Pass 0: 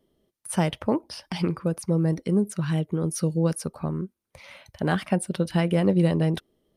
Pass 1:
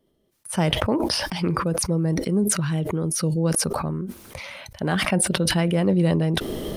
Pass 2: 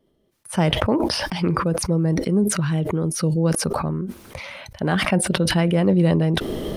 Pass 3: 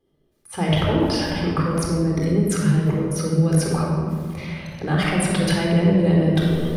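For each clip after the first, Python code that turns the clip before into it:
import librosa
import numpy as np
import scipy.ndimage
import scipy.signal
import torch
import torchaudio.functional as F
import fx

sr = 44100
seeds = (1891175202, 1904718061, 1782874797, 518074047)

y1 = fx.sustainer(x, sr, db_per_s=20.0)
y2 = fx.high_shelf(y1, sr, hz=5200.0, db=-6.5)
y2 = y2 * librosa.db_to_amplitude(2.5)
y3 = fx.room_shoebox(y2, sr, seeds[0], volume_m3=2600.0, walls='mixed', distance_m=3.9)
y3 = y3 * librosa.db_to_amplitude(-7.0)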